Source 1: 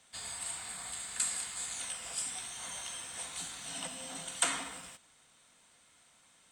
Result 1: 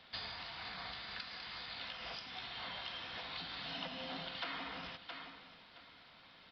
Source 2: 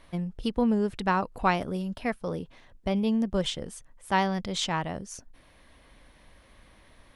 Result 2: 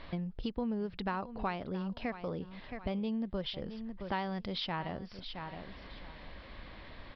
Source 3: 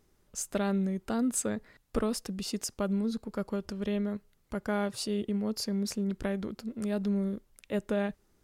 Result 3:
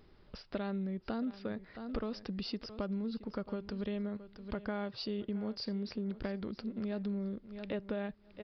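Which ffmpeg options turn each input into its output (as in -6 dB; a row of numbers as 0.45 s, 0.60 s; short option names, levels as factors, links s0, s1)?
-filter_complex "[0:a]asplit=2[s0][s1];[s1]aecho=0:1:669|1338:0.126|0.0189[s2];[s0][s2]amix=inputs=2:normalize=0,acompressor=threshold=0.00501:ratio=3,aresample=11025,aresample=44100,volume=2.24"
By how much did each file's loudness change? -7.0 LU, -9.5 LU, -6.5 LU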